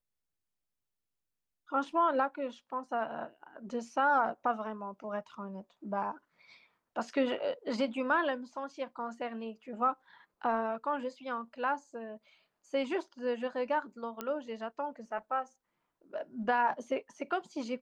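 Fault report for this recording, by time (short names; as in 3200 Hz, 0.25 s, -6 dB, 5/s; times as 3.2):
14.21 pop -21 dBFS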